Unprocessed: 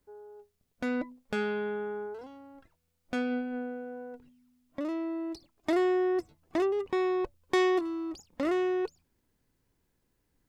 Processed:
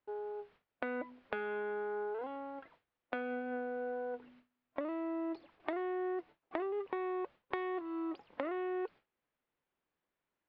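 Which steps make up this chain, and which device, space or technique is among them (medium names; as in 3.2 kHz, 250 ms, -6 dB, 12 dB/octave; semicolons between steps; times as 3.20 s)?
baby monitor (band-pass 450–4300 Hz; compression 10:1, threshold -46 dBFS, peak gain reduction 21 dB; white noise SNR 20 dB); gate with hold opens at -57 dBFS; low-pass 4 kHz; distance through air 410 m; trim +12 dB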